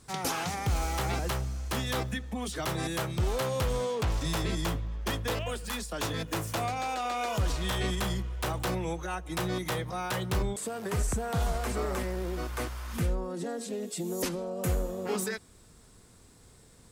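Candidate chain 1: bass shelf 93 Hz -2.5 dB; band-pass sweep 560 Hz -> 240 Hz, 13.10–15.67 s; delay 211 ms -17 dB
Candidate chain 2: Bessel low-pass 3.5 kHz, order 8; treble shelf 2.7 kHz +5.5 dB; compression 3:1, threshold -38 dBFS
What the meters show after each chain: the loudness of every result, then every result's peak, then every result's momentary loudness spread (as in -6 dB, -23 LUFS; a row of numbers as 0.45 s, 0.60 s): -40.5 LUFS, -39.5 LUFS; -24.0 dBFS, -25.5 dBFS; 8 LU, 3 LU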